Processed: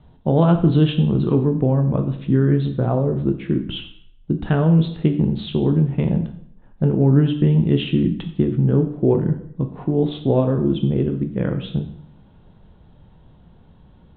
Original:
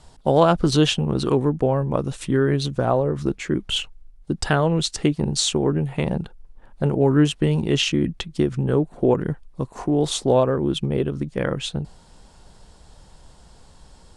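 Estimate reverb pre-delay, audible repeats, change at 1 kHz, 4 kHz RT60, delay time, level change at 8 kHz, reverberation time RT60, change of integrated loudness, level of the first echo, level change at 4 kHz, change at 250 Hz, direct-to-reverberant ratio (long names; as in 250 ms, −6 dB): 5 ms, no echo audible, −5.0 dB, 0.60 s, no echo audible, below −40 dB, 0.65 s, +2.5 dB, no echo audible, −8.5 dB, +3.5 dB, 5.5 dB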